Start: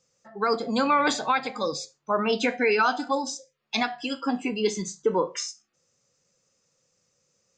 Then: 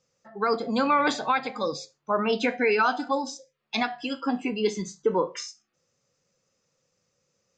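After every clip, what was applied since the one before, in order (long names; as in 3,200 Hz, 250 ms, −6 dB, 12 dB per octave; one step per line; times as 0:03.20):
high-frequency loss of the air 79 metres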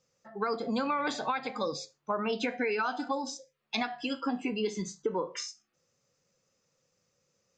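downward compressor 5 to 1, threshold −26 dBFS, peak gain reduction 8.5 dB
level −1.5 dB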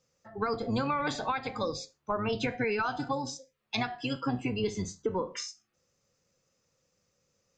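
sub-octave generator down 1 octave, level −4 dB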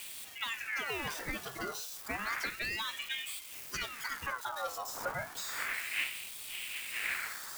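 spike at every zero crossing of −29.5 dBFS
wind on the microphone 460 Hz −37 dBFS
ring modulator whose carrier an LFO sweeps 1,800 Hz, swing 50%, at 0.31 Hz
level −4.5 dB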